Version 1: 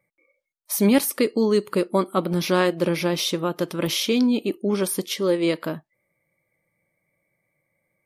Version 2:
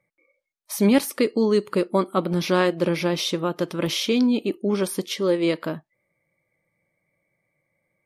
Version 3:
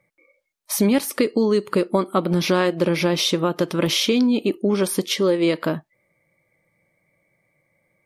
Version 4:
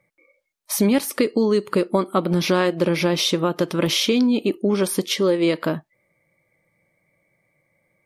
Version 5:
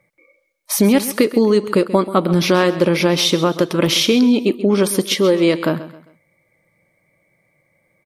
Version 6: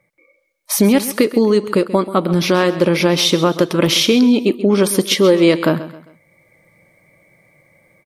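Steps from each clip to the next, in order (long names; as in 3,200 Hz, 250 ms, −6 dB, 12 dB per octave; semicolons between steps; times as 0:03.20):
high-shelf EQ 11,000 Hz −12 dB
downward compressor 3 to 1, threshold −23 dBFS, peak gain reduction 8 dB; level +6.5 dB
no processing that can be heard
repeating echo 133 ms, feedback 35%, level −15 dB; level +4.5 dB
automatic gain control gain up to 10 dB; level −1 dB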